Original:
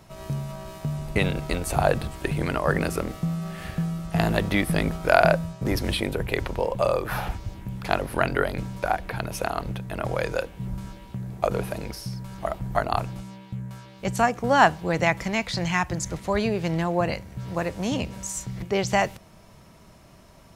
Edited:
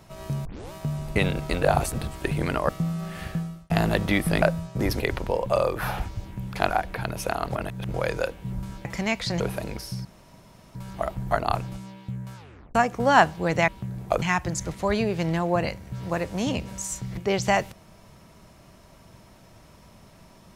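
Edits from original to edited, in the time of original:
0.45 tape start 0.27 s
1.62–1.94 reverse
2.69–3.12 cut
3.72–4.13 fade out
4.85–5.28 cut
5.86–6.29 cut
7.99–8.85 cut
9.66–10.09 reverse
11–11.54 swap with 15.12–15.67
12.19 insert room tone 0.70 s
13.8 tape stop 0.39 s

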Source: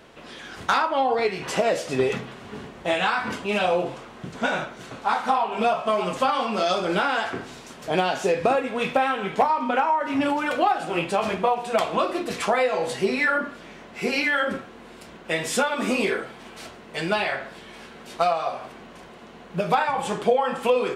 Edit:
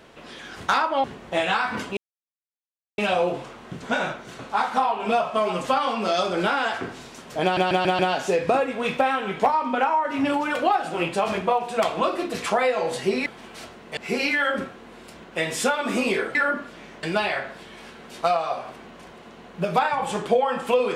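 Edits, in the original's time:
1.04–2.57 cut
3.5 insert silence 1.01 s
7.95 stutter 0.14 s, 5 plays
13.22–13.9 swap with 16.28–16.99

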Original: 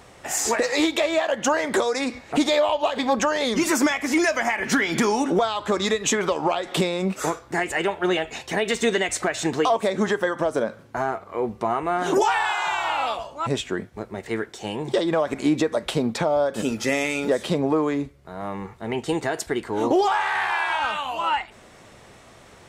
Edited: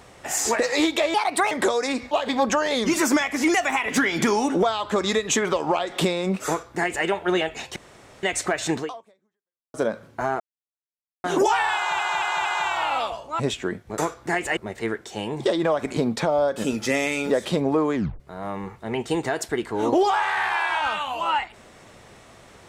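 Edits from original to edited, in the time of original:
1.14–1.63 speed 132%
2.23–2.81 cut
4.24–4.74 speed 114%
7.23–7.82 copy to 14.05
8.52–8.99 room tone
9.53–10.5 fade out exponential
11.16–12 mute
12.52 stutter 0.23 s, 4 plays
15.45–15.95 cut
17.93 tape stop 0.25 s

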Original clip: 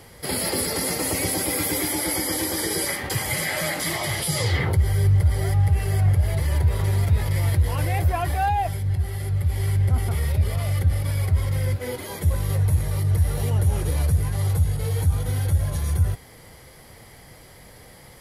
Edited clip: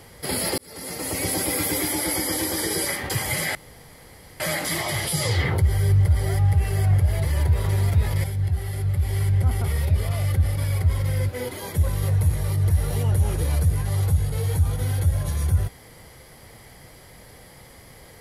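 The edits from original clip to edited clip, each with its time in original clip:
0.58–1.35 fade in
3.55 insert room tone 0.85 s
7.39–8.71 cut

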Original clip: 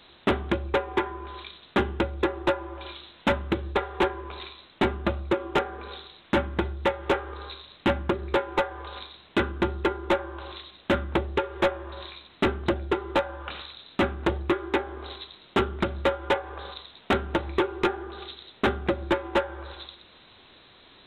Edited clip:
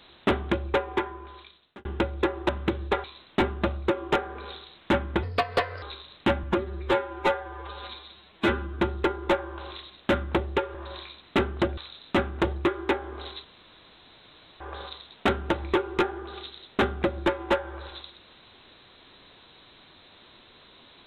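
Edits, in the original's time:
0.82–1.85 fade out linear
2.49–3.33 cut
3.88–4.47 cut
6.66–7.42 speed 128%
8.03–9.61 stretch 1.5×
11.55–11.81 cut
12.84–13.62 cut
15.29–16.45 room tone

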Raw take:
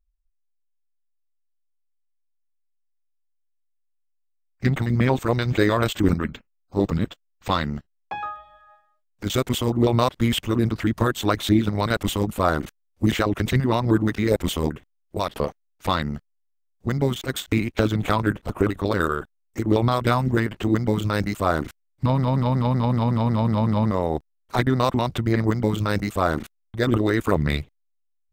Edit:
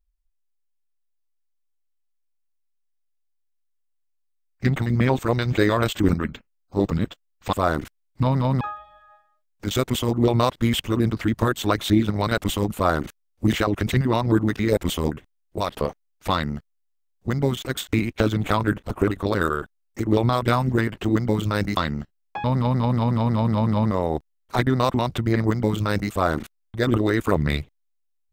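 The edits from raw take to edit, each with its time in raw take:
7.53–8.2 swap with 21.36–22.44

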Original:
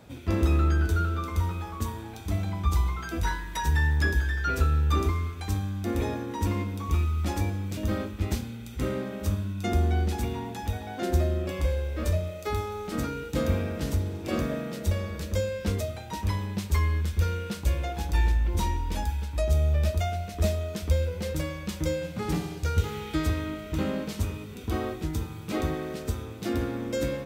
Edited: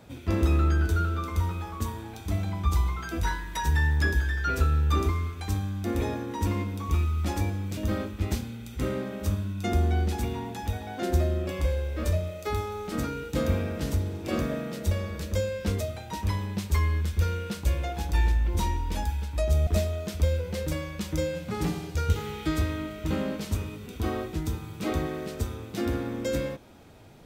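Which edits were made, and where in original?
19.67–20.35 cut

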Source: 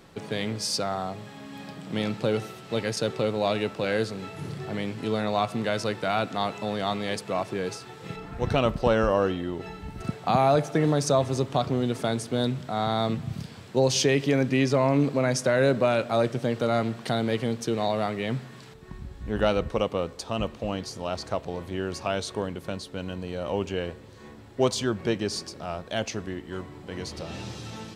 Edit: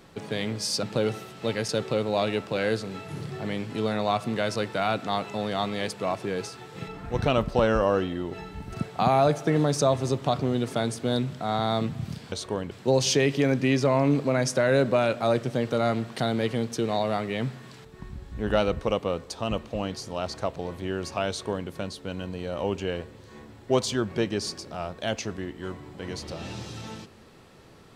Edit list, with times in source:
0.83–2.11 cut
22.18–22.57 copy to 13.6

